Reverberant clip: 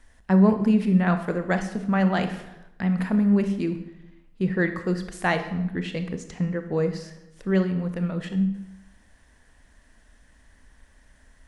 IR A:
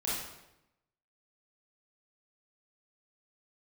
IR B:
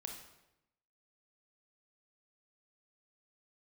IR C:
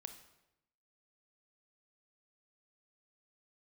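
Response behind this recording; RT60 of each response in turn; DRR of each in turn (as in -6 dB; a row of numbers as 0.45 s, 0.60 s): C; 0.90 s, 0.90 s, 0.90 s; -8.0 dB, 2.0 dB, 7.5 dB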